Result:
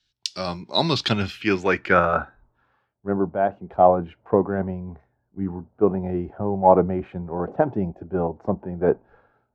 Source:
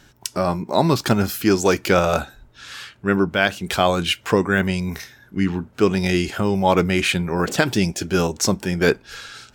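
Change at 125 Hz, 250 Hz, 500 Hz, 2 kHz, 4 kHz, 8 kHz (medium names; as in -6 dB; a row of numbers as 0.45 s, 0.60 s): -5.5 dB, -5.0 dB, -1.0 dB, -6.5 dB, no reading, under -15 dB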